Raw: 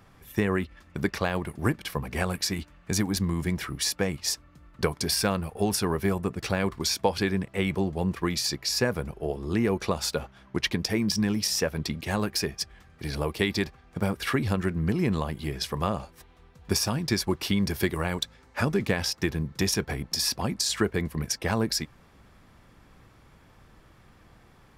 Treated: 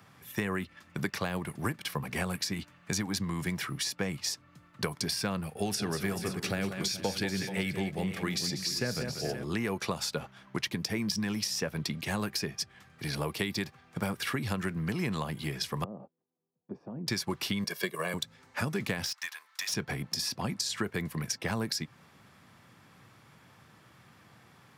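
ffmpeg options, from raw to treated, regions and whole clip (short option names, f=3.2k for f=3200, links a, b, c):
-filter_complex "[0:a]asettb=1/sr,asplit=3[a][b][c];[a]atrim=end=5.464[d];[b]atrim=start=5.46:end=9.44,asetpts=PTS-STARTPTS,afade=t=in:d=0.004:c=qsin,afade=t=out:st=3.976:d=0.004:c=qsin,equalizer=f=1k:w=3.5:g=-10,aecho=1:1:40|187|203|431|525:0.1|0.266|0.133|0.158|0.158,atrim=end_sample=175518[e];[c]atrim=start=9.436[f];[d][e]acrossfade=d=0.004:c1=hsin:c2=qsin[g];[g][f]acrossfade=d=0.004:c1=qsin:c2=hsin,asettb=1/sr,asplit=3[h][i][j];[h]atrim=end=15.844[k];[i]atrim=start=15.84:end=17.07,asetpts=PTS-STARTPTS,afade=t=in:d=0.004:c=qsin,afade=t=out:st=1.226:d=0.004:c=qsin,agate=range=-23dB:threshold=-44dB:ratio=16:release=100:detection=peak,acompressor=threshold=-29dB:ratio=5:attack=3.2:release=140:knee=1:detection=peak,asuperpass=centerf=330:order=4:qfactor=0.81[l];[j]atrim=start=17.066[m];[k][l]acrossfade=d=0.004:c1=hsin:c2=qsin[n];[n][m]acrossfade=d=0.004:c1=qsin:c2=hsin,asettb=1/sr,asplit=3[o][p][q];[o]atrim=end=17.644[r];[p]atrim=start=17.64:end=18.14,asetpts=PTS-STARTPTS,afade=t=in:d=0.004:c=qsin,afade=t=out:st=0.496:d=0.004:c=qsin,highpass=f=210:w=0.5412,highpass=f=210:w=1.3066,aecho=1:1:1.8:0.81,atrim=end_sample=22050,agate=range=-7dB:threshold=-32dB:ratio=16:release=100:detection=peak[s];[q]atrim=start=18.136[t];[r][s]acrossfade=d=0.004:c1=hsin:c2=qsin[u];[u][t]acrossfade=d=0.004:c1=qsin:c2=hsin,asettb=1/sr,asplit=3[v][w][x];[v]atrim=end=19.064[y];[w]atrim=start=19.06:end=19.72,asetpts=PTS-STARTPTS,afade=t=in:d=0.004:c=qsin,afade=t=out:st=0.656:d=0.004:c=qsin,highpass=f=1k:w=0.5412,highpass=f=1k:w=1.3066,volume=27.5dB,asoftclip=hard,volume=-27.5dB[z];[x]atrim=start=19.716[aa];[y][z]acrossfade=d=0.004:c1=hsin:c2=qsin[ab];[ab][aa]acrossfade=d=0.004:c1=qsin:c2=hsin,highpass=f=110:w=0.5412,highpass=f=110:w=1.3066,equalizer=f=390:t=o:w=2.1:g=-6,acrossover=split=480|7100[ac][ad][ae];[ac]acompressor=threshold=-33dB:ratio=4[af];[ad]acompressor=threshold=-35dB:ratio=4[ag];[ae]acompressor=threshold=-46dB:ratio=4[ah];[af][ag][ah]amix=inputs=3:normalize=0,volume=2dB"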